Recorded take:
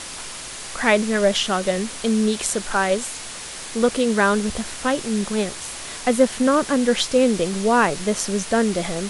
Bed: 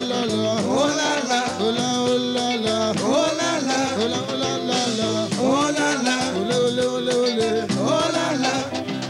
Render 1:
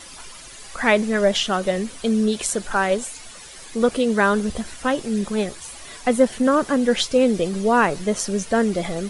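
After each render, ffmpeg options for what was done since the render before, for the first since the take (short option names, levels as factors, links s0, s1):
-af "afftdn=nr=11:nf=-34"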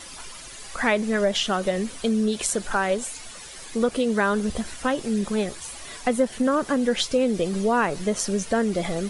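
-af "acompressor=threshold=0.0891:ratio=2"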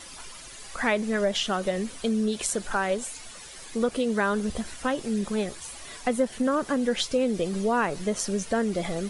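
-af "volume=0.708"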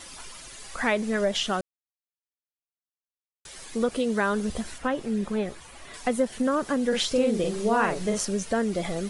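-filter_complex "[0:a]asettb=1/sr,asplit=3[s0][s1][s2];[s0]atrim=end=4.784[s3];[s1]atrim=start=4.78:end=5.94,asetpts=PTS-STARTPTS,afade=t=in:d=0.004:c=qsin,afade=t=out:st=1.156:d=0.004:c=qsin,acrossover=split=3000[s4][s5];[s5]acompressor=threshold=0.00282:ratio=4:attack=1:release=60[s6];[s4][s6]amix=inputs=2:normalize=0[s7];[s2]atrim=start=5.936[s8];[s3][s7]acrossfade=d=0.004:c1=hsin:c2=qsin[s9];[s9][s8]acrossfade=d=0.004:c1=qsin:c2=hsin,asettb=1/sr,asplit=3[s10][s11][s12];[s10]atrim=end=6.884[s13];[s11]atrim=start=6.88:end=8.25,asetpts=PTS-STARTPTS,afade=t=in:d=0.004:c=qsin,afade=t=out:st=1.366:d=0.004:c=qsin,asplit=2[s14][s15];[s15]adelay=44,volume=0.668[s16];[s14][s16]amix=inputs=2:normalize=0,atrim=end_sample=60417[s17];[s12]atrim=start=8.246[s18];[s13][s17]acrossfade=d=0.004:c1=hsin:c2=qsin[s19];[s19][s18]acrossfade=d=0.004:c1=qsin:c2=hsin,asplit=3[s20][s21][s22];[s20]atrim=end=1.61,asetpts=PTS-STARTPTS,afade=t=out:st=1.606:d=0.004:c=hsin[s23];[s21]atrim=start=1.61:end=3.45,asetpts=PTS-STARTPTS,volume=0[s24];[s22]atrim=start=3.45,asetpts=PTS-STARTPTS,afade=t=in:d=0.004:c=hsin[s25];[s23][s24][s25]concat=n=3:v=0:a=1"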